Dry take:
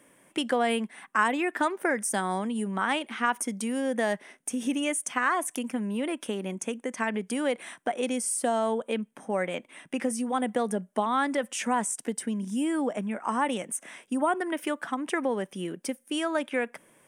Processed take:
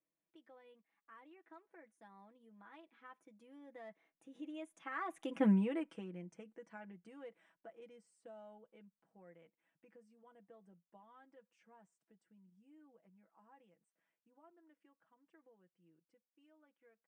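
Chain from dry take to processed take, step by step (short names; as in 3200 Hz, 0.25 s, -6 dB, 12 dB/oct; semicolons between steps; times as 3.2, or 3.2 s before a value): Doppler pass-by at 5.47, 20 m/s, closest 1.2 m; tape spacing loss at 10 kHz 23 dB; comb 6.1 ms, depth 73%; short-mantissa float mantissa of 8-bit; gain +3.5 dB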